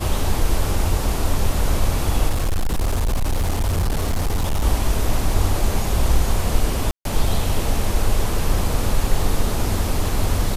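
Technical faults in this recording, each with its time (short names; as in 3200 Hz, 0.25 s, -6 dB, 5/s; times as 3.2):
2.29–4.64 clipped -16 dBFS
6.91–7.05 gap 0.142 s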